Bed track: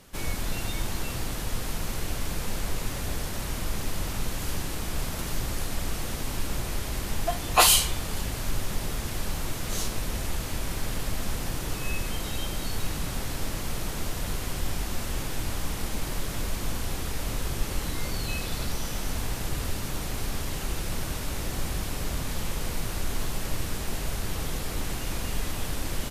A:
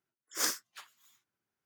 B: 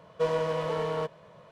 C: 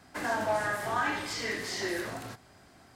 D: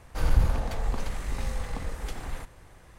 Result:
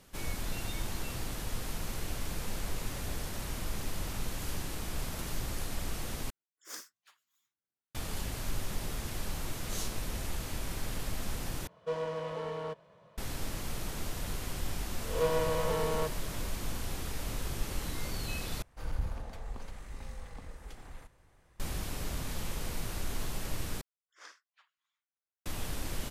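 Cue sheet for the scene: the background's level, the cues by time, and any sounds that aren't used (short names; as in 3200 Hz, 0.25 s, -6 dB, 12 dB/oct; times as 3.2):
bed track -6 dB
6.3 replace with A -13.5 dB
11.67 replace with B -7.5 dB
15.01 add B -3 dB + spectral swells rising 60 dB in 0.50 s
18.62 replace with D -12.5 dB
23.81 replace with A -14.5 dB + BPF 660–3200 Hz
not used: C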